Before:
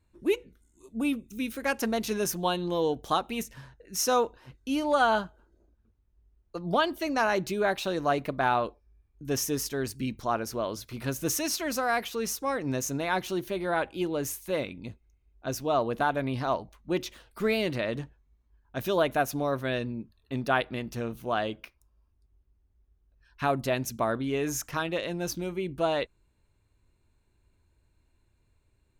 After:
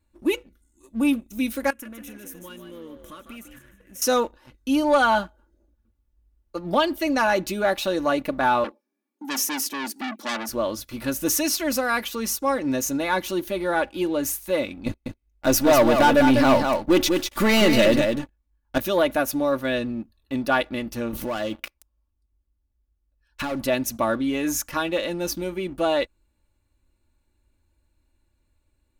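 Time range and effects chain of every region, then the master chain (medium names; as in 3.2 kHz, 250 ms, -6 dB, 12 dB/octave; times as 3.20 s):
1.70–4.02 s: static phaser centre 1.9 kHz, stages 4 + compression 3:1, threshold -46 dBFS + frequency-shifting echo 151 ms, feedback 37%, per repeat +61 Hz, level -8 dB
8.64–10.49 s: steep high-pass 210 Hz 72 dB/octave + bass shelf 270 Hz +9 dB + transformer saturation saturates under 4 kHz
14.86–18.78 s: partial rectifier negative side -3 dB + waveshaping leveller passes 3 + delay 197 ms -6 dB
21.13–23.64 s: waveshaping leveller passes 3 + compression, threshold -31 dBFS
whole clip: peaking EQ 15 kHz +5.5 dB 0.76 oct; comb 3.5 ms, depth 62%; waveshaping leveller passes 1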